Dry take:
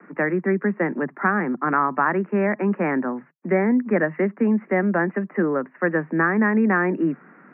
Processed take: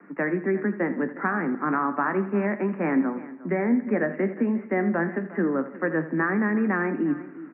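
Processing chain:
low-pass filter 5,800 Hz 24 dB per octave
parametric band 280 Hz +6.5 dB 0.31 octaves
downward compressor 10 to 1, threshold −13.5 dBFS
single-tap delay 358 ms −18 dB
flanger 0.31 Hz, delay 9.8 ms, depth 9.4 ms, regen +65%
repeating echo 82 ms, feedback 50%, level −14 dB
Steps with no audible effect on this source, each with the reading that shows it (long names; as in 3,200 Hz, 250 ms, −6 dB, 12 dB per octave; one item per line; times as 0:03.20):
low-pass filter 5,800 Hz: nothing at its input above 2,300 Hz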